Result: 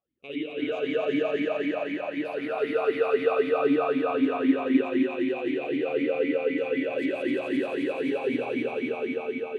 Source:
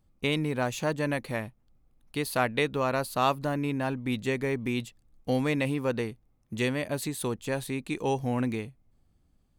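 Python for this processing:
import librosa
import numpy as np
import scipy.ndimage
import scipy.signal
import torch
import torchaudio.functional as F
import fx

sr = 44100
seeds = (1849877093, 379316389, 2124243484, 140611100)

y = fx.rider(x, sr, range_db=10, speed_s=0.5)
y = fx.echo_swell(y, sr, ms=87, loudest=5, wet_db=-3)
y = fx.rev_spring(y, sr, rt60_s=3.1, pass_ms=(49,), chirp_ms=65, drr_db=-5.5)
y = fx.vowel_sweep(y, sr, vowels='a-i', hz=3.9)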